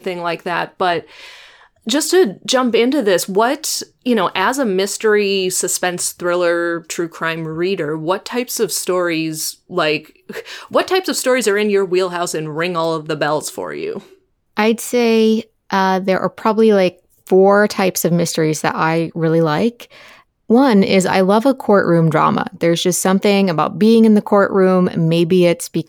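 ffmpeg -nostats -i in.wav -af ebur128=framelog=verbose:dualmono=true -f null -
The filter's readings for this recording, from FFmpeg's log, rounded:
Integrated loudness:
  I:         -12.8 LUFS
  Threshold: -23.2 LUFS
Loudness range:
  LRA:         5.4 LU
  Threshold: -33.3 LUFS
  LRA low:   -16.1 LUFS
  LRA high:  -10.7 LUFS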